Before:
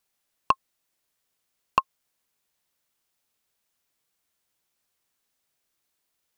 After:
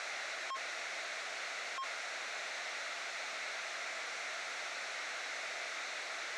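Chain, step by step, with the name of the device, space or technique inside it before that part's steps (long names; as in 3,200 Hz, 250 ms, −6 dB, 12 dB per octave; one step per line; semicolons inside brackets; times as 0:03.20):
home computer beeper (sign of each sample alone; loudspeaker in its box 650–5,300 Hz, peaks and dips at 660 Hz +7 dB, 990 Hz −7 dB, 1,400 Hz +4 dB, 2,100 Hz +6 dB, 3,100 Hz −8 dB, 4,900 Hz −8 dB)
level +3.5 dB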